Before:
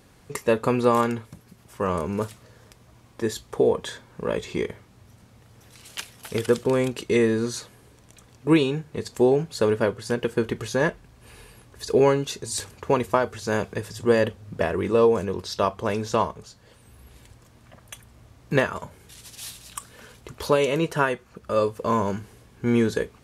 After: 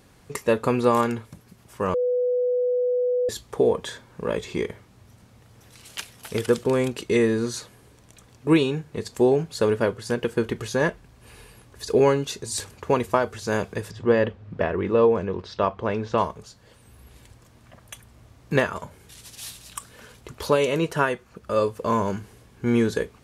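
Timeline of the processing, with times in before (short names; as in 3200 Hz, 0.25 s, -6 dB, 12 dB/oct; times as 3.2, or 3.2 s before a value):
1.94–3.29 bleep 495 Hz -19.5 dBFS
13.91–16.18 LPF 3000 Hz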